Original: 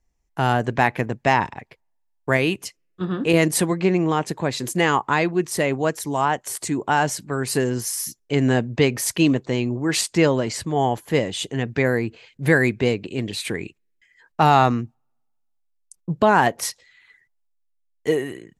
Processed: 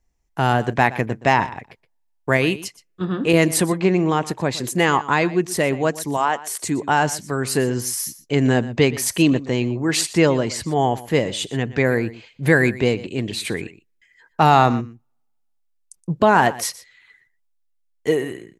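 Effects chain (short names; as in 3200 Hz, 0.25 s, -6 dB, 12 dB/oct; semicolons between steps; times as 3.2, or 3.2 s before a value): 6.17–6.64 bell 100 Hz -14.5 dB 2.1 oct; on a send: echo 0.121 s -17.5 dB; on the sum: gain +1.5 dB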